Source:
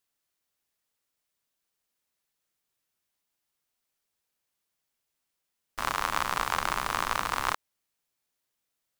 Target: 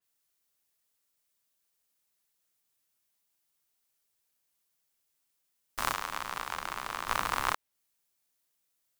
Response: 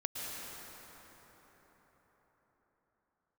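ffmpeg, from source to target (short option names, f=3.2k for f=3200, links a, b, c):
-filter_complex "[0:a]highshelf=f=5.7k:g=7.5,asettb=1/sr,asplit=3[a][b][c];[a]atrim=end=5.934[d];[b]atrim=start=5.93:end=7.08,asetpts=PTS-STARTPTS,afade=t=in:d=0.004:c=qsin,afade=t=out:st=1.146:d=0.004:c=qsin,acrossover=split=180|2700|6600[e][f][g][h];[e]acompressor=threshold=-53dB:ratio=4[i];[f]acompressor=threshold=-31dB:ratio=4[j];[g]acompressor=threshold=-40dB:ratio=4[k];[h]acompressor=threshold=-44dB:ratio=4[l];[i][j][k][l]amix=inputs=4:normalize=0[m];[c]atrim=start=7.076[n];[d][m]acrossfade=d=0.004:c1=hsin:c2=qsin[o];[o][n]acrossfade=d=0.004:c1=qsin:c2=hsin,adynamicequalizer=threshold=0.00501:dfrequency=3900:dqfactor=0.7:tfrequency=3900:tqfactor=0.7:attack=5:release=100:ratio=0.375:range=2.5:mode=cutabove:tftype=highshelf,volume=-1.5dB"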